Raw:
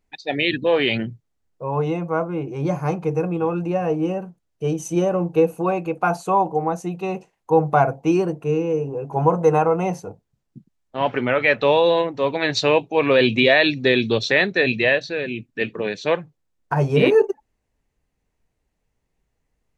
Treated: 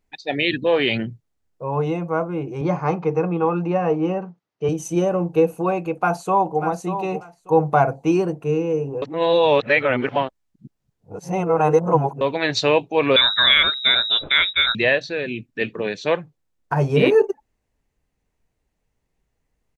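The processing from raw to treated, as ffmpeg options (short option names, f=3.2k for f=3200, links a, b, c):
-filter_complex "[0:a]asettb=1/sr,asplit=3[a][b][c];[a]atrim=end=2.614[d];[b]atrim=start=2.61:end=4.69,asetpts=PTS-STARTPTS,afade=t=in:d=0.004:c=qsin,afade=t=out:st=2.076:d=0.004:c=qsin,highpass=160,equalizer=f=170:t=q:w=4:g=4,equalizer=f=420:t=q:w=4:g=3,equalizer=f=870:t=q:w=4:g=5,equalizer=f=1.2k:t=q:w=4:g=6,equalizer=f=2k:t=q:w=4:g=4,lowpass=f=5.6k:w=0.5412,lowpass=f=5.6k:w=1.3066[e];[c]atrim=start=4.686[f];[d][e]acrossfade=d=0.004:c1=hsin:c2=qsin[g];[g][f]acrossfade=d=0.004:c1=qsin:c2=hsin,asplit=2[h][i];[i]afade=t=in:st=6.01:d=0.01,afade=t=out:st=6.61:d=0.01,aecho=0:1:590|1180|1770:0.334965|0.0669931|0.0133986[j];[h][j]amix=inputs=2:normalize=0,asettb=1/sr,asplit=3[k][l][m];[k]atrim=end=13.164[n];[l]atrim=start=13.16:end=14.75,asetpts=PTS-STARTPTS,afade=t=in:d=0.004:c=qsin,afade=t=out:st=1.586:d=0.004:c=qsin,lowpass=f=3.4k:t=q:w=0.5098,lowpass=f=3.4k:t=q:w=0.6013,lowpass=f=3.4k:t=q:w=0.9,lowpass=f=3.4k:t=q:w=2.563,afreqshift=-4000[o];[m]atrim=start=14.746[p];[n][o]acrossfade=d=0.004:c1=hsin:c2=qsin[q];[q][p]acrossfade=d=0.004:c1=qsin:c2=hsin,asplit=3[r][s][t];[r]atrim=end=9.022[u];[s]atrim=start=9.018:end=12.212,asetpts=PTS-STARTPTS,areverse[v];[t]atrim=start=12.208[w];[u][v]acrossfade=d=0.004:c1=hsin:c2=hsin[x];[x][w]acrossfade=d=0.004:c1=hsin:c2=hsin"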